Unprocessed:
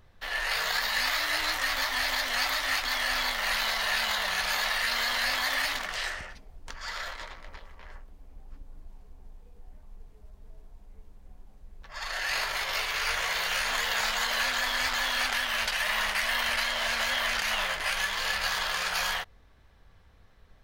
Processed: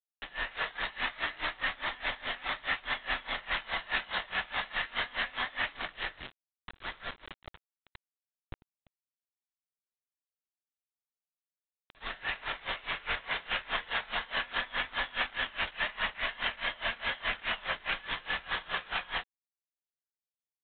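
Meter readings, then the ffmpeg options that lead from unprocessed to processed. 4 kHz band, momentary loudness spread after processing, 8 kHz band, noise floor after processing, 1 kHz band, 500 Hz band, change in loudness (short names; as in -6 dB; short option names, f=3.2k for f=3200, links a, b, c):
-8.0 dB, 10 LU, under -40 dB, under -85 dBFS, -5.5 dB, -5.0 dB, -6.5 dB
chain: -af "aresample=8000,acrusher=bits=5:mix=0:aa=0.000001,aresample=44100,aeval=exprs='val(0)*pow(10,-23*(0.5-0.5*cos(2*PI*4.8*n/s))/20)':c=same"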